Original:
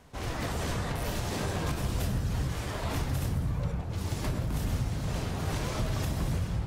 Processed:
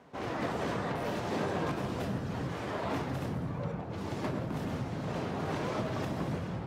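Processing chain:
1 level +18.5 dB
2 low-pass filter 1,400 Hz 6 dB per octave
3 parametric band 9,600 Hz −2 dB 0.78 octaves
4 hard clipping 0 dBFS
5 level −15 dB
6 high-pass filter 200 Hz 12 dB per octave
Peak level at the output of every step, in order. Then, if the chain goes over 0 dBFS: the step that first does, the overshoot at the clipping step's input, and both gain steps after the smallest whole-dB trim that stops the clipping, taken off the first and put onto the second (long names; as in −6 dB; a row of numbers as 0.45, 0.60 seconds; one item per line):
−1.5, −2.0, −2.0, −2.0, −17.0, −21.0 dBFS
no step passes full scale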